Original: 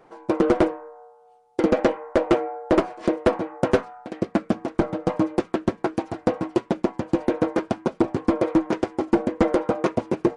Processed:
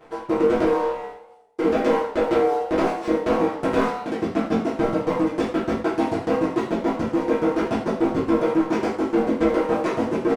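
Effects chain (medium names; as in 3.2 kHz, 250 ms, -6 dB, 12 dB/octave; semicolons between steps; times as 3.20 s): waveshaping leveller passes 2; reverse; compression 6:1, threshold -28 dBFS, peak gain reduction 15 dB; reverse; doubling 18 ms -11 dB; gated-style reverb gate 140 ms falling, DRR -5.5 dB; modulated delay 81 ms, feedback 54%, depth 141 cents, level -16.5 dB; trim +1.5 dB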